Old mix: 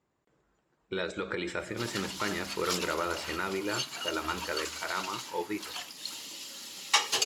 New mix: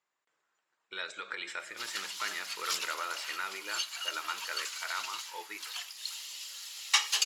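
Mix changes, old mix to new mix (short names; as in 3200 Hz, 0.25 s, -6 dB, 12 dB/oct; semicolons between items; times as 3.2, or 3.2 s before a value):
speech: remove HPF 460 Hz 6 dB/oct; master: add HPF 1300 Hz 12 dB/oct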